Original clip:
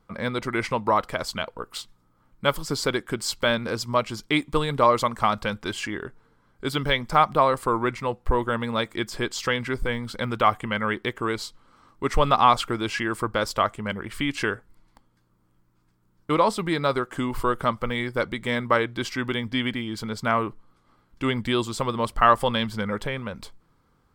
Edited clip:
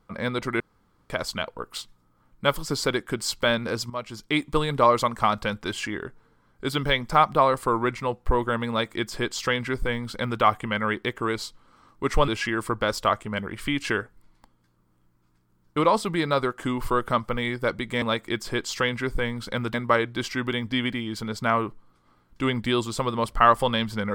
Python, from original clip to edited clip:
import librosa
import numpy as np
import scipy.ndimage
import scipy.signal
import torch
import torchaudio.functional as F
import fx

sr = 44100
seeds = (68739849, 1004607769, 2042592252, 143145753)

y = fx.edit(x, sr, fx.room_tone_fill(start_s=0.6, length_s=0.5),
    fx.fade_in_from(start_s=3.9, length_s=0.56, floor_db=-13.0),
    fx.duplicate(start_s=8.69, length_s=1.72, to_s=18.55),
    fx.cut(start_s=12.28, length_s=0.53), tone=tone)